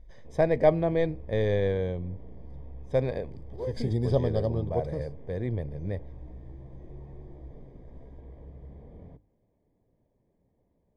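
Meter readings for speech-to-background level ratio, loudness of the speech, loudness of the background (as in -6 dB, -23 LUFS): 19.5 dB, -28.5 LUFS, -48.0 LUFS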